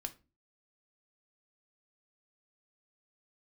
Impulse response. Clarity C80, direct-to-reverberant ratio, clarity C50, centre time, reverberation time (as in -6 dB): 24.5 dB, 6.0 dB, 17.5 dB, 5 ms, 0.30 s